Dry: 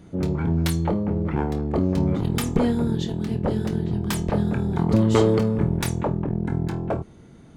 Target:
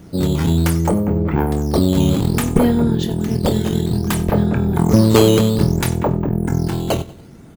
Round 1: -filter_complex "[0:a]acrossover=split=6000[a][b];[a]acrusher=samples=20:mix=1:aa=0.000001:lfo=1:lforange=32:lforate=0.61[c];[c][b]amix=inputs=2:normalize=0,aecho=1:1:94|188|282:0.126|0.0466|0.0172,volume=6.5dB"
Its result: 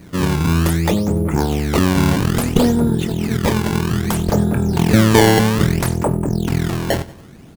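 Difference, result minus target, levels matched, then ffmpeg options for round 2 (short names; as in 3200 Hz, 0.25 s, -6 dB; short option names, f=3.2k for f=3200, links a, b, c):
decimation with a swept rate: distortion +9 dB
-filter_complex "[0:a]acrossover=split=6000[a][b];[a]acrusher=samples=7:mix=1:aa=0.000001:lfo=1:lforange=11.2:lforate=0.61[c];[c][b]amix=inputs=2:normalize=0,aecho=1:1:94|188|282:0.126|0.0466|0.0172,volume=6.5dB"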